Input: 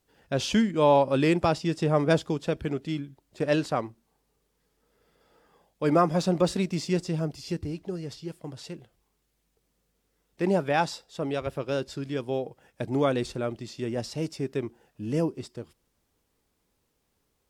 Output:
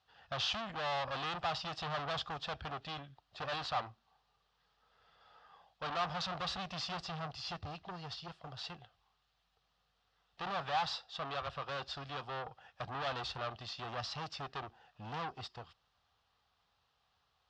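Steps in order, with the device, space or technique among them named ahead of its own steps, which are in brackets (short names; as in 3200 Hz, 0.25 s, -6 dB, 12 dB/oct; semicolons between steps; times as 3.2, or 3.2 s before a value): scooped metal amplifier (tube stage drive 35 dB, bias 0.45; speaker cabinet 79–4100 Hz, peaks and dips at 280 Hz +6 dB, 750 Hz +10 dB, 1200 Hz +7 dB, 2200 Hz -8 dB; passive tone stack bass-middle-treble 10-0-10); gain +9.5 dB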